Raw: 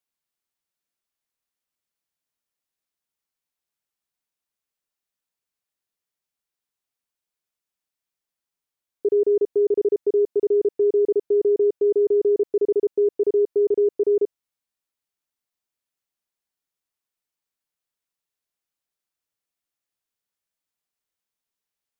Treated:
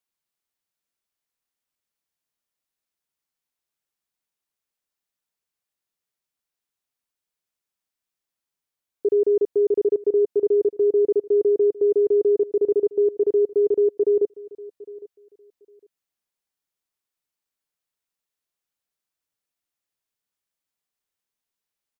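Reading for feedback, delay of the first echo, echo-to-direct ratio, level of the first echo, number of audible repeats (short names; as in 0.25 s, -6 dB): 20%, 0.807 s, -20.0 dB, -20.0 dB, 2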